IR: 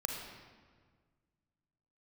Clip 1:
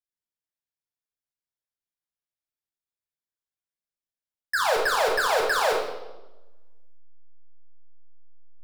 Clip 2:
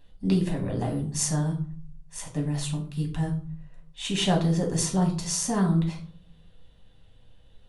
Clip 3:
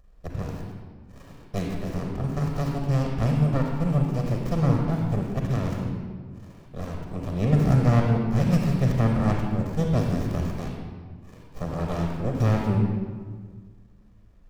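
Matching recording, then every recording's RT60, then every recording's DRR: 3; 1.1 s, 0.45 s, 1.7 s; -1.5 dB, 0.0 dB, 0.5 dB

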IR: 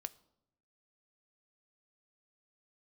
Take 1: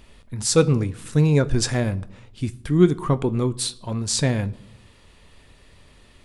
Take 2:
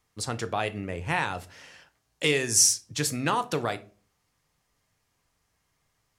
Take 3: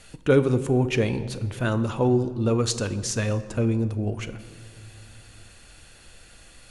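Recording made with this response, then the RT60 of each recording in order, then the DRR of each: 1; 0.80 s, 0.40 s, no single decay rate; 13.0 dB, 10.5 dB, 11.0 dB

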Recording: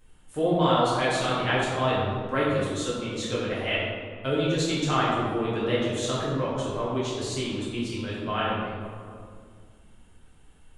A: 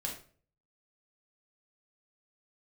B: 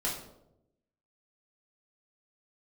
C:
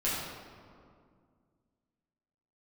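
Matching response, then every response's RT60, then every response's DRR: C; 0.45 s, 0.85 s, 2.1 s; -1.5 dB, -5.5 dB, -9.0 dB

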